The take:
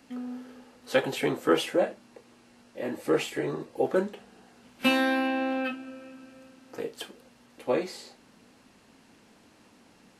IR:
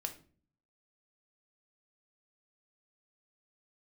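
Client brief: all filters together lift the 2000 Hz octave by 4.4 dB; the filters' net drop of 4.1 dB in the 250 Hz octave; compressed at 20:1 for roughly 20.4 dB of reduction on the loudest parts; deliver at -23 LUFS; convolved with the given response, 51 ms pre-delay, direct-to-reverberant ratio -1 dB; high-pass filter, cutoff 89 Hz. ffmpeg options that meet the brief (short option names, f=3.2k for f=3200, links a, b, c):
-filter_complex "[0:a]highpass=89,equalizer=f=250:t=o:g=-5,equalizer=f=2k:t=o:g=6,acompressor=threshold=-38dB:ratio=20,asplit=2[a][b];[1:a]atrim=start_sample=2205,adelay=51[c];[b][c]afir=irnorm=-1:irlink=0,volume=1.5dB[d];[a][d]amix=inputs=2:normalize=0,volume=18dB"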